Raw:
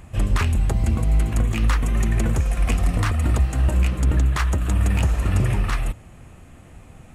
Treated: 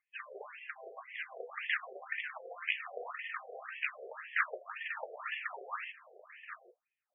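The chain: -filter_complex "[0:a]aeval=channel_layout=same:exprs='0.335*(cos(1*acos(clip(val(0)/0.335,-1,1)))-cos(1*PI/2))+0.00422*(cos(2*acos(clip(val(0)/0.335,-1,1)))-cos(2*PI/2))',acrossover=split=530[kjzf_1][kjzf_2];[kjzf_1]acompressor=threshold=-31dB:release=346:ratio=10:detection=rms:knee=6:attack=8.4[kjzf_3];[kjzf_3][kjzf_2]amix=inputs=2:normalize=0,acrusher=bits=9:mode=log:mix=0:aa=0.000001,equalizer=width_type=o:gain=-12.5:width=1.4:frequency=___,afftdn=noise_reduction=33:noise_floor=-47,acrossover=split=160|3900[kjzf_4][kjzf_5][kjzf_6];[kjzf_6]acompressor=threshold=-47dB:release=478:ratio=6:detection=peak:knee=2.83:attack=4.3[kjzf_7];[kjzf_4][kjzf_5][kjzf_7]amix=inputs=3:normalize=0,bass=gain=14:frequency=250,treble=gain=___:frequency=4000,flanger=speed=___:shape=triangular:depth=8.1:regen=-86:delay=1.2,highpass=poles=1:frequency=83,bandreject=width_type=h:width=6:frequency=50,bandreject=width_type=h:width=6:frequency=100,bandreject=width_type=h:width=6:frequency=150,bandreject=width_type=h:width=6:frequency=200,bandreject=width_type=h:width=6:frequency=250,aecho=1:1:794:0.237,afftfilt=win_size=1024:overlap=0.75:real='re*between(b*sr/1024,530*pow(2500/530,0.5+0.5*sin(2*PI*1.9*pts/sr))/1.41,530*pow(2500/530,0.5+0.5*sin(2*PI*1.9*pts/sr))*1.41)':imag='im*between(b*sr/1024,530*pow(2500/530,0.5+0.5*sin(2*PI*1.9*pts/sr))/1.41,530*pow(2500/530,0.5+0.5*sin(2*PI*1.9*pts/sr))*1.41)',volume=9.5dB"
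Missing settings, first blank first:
850, -11, 0.86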